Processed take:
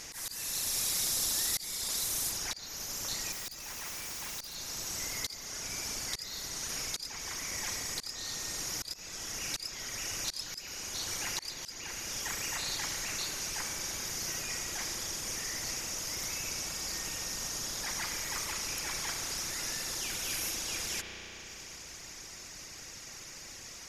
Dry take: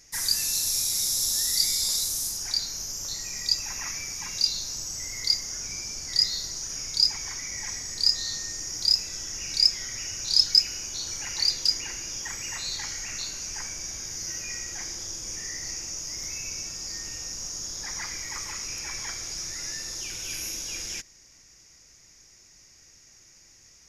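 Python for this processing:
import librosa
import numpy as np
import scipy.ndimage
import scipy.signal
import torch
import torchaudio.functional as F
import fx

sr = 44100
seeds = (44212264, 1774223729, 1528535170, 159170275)

y = fx.dereverb_blind(x, sr, rt60_s=1.2)
y = fx.rev_spring(y, sr, rt60_s=2.3, pass_ms=(33,), chirp_ms=65, drr_db=6.0)
y = fx.auto_swell(y, sr, attack_ms=600.0)
y = fx.tube_stage(y, sr, drive_db=46.0, bias=0.25, at=(3.32, 4.55))
y = fx.spectral_comp(y, sr, ratio=2.0)
y = F.gain(torch.from_numpy(y), -1.5).numpy()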